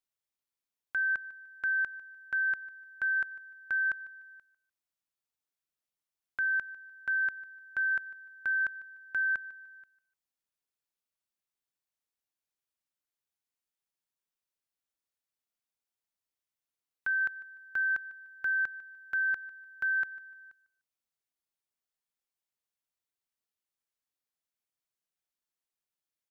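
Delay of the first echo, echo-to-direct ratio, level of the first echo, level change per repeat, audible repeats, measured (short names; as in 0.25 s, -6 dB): 0.149 s, -18.5 dB, -19.0 dB, -10.5 dB, 2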